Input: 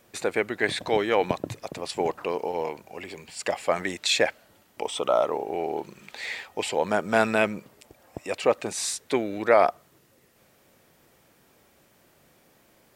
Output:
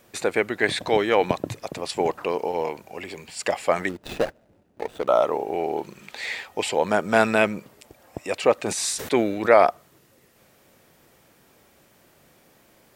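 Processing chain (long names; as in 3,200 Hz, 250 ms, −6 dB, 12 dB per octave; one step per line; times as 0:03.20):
0:03.89–0:05.08: running median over 41 samples
0:08.63–0:09.62: level that may fall only so fast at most 62 dB per second
level +3 dB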